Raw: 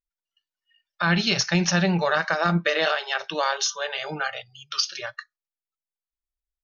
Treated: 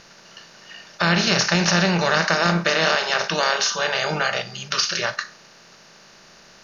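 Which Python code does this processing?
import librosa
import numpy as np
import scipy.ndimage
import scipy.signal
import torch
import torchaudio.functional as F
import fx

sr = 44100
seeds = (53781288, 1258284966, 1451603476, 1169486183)

y = fx.bin_compress(x, sr, power=0.4)
y = y * librosa.db_to_amplitude(-1.5)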